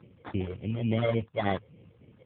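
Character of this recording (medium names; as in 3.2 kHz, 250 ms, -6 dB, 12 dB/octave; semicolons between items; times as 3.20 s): phasing stages 12, 3.5 Hz, lowest notch 240–2000 Hz; aliases and images of a low sample rate 2.7 kHz, jitter 0%; AMR-NB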